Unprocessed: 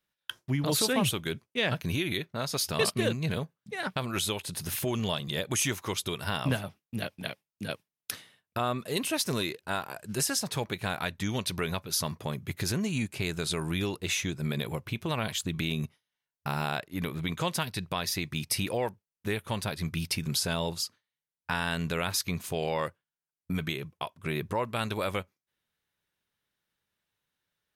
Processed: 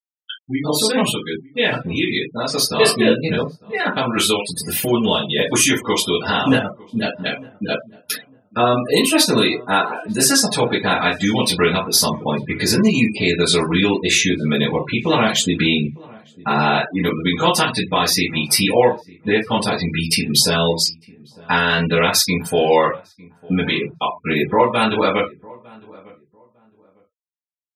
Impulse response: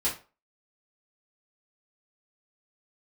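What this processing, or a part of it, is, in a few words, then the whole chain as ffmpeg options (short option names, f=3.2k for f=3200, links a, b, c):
far laptop microphone: -filter_complex "[1:a]atrim=start_sample=2205[a];[0:a][a]afir=irnorm=-1:irlink=0,highpass=200,dynaudnorm=f=220:g=21:m=8dB,afftfilt=real='re*gte(hypot(re,im),0.0562)':imag='im*gte(hypot(re,im),0.0562)':win_size=1024:overlap=0.75,asplit=2[b][c];[c]adelay=903,lowpass=f=1.1k:p=1,volume=-22.5dB,asplit=2[d][e];[e]adelay=903,lowpass=f=1.1k:p=1,volume=0.25[f];[b][d][f]amix=inputs=3:normalize=0,volume=1.5dB"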